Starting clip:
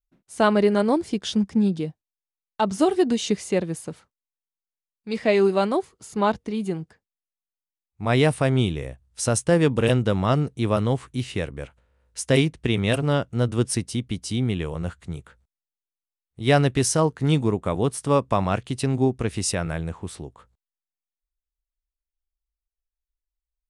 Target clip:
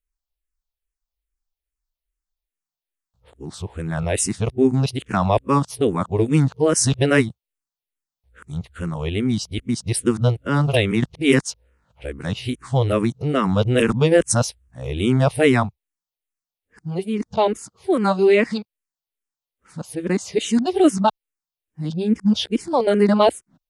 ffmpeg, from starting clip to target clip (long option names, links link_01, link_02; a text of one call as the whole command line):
ffmpeg -i in.wav -filter_complex "[0:a]areverse,asplit=2[link_01][link_02];[link_02]afreqshift=-2.4[link_03];[link_01][link_03]amix=inputs=2:normalize=1,volume=6dB" out.wav